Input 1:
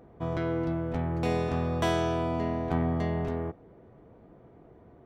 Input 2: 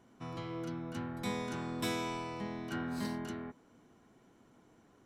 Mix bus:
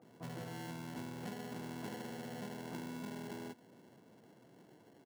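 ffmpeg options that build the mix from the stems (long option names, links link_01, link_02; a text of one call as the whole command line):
ffmpeg -i stem1.wav -i stem2.wav -filter_complex "[0:a]lowpass=1700,acompressor=threshold=-39dB:ratio=2,volume=-10.5dB[link_01];[1:a]acrusher=samples=36:mix=1:aa=0.000001,adelay=17,volume=-0.5dB[link_02];[link_01][link_02]amix=inputs=2:normalize=0,highpass=frequency=120:width=0.5412,highpass=frequency=120:width=1.3066,acompressor=threshold=-41dB:ratio=6" out.wav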